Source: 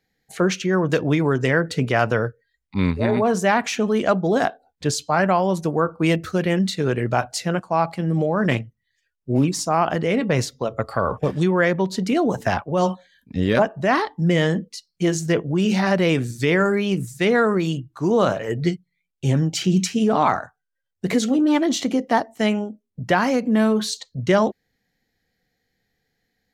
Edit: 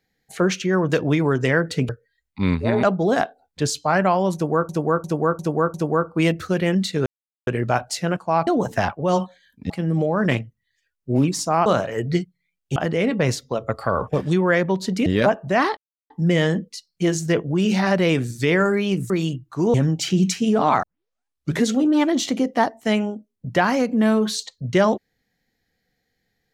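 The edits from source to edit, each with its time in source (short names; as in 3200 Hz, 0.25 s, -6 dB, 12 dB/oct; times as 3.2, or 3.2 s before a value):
1.89–2.25 cut
3.19–4.07 cut
5.58–5.93 loop, 5 plays
6.9 insert silence 0.41 s
12.16–13.39 move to 7.9
14.1 insert silence 0.33 s
17.1–17.54 cut
18.18–19.28 move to 9.86
20.37 tape start 0.83 s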